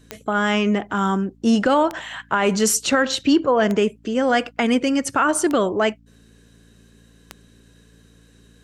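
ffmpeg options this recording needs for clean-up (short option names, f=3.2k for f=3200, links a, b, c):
-af "adeclick=t=4,bandreject=f=56.4:t=h:w=4,bandreject=f=112.8:t=h:w=4,bandreject=f=169.2:t=h:w=4,bandreject=f=225.6:t=h:w=4,bandreject=f=282:t=h:w=4"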